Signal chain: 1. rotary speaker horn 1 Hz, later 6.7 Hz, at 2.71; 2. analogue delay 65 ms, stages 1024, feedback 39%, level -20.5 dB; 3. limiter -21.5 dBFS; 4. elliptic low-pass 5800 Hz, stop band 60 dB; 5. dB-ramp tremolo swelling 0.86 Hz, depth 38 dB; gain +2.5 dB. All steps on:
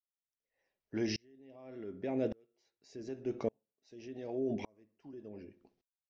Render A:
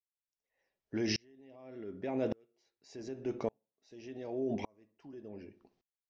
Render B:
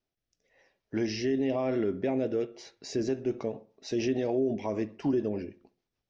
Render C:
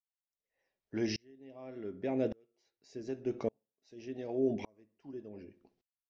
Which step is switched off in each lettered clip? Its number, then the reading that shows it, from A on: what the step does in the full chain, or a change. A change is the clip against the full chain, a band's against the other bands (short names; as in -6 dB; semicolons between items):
1, 4 kHz band +4.0 dB; 5, momentary loudness spread change -8 LU; 3, crest factor change -1.5 dB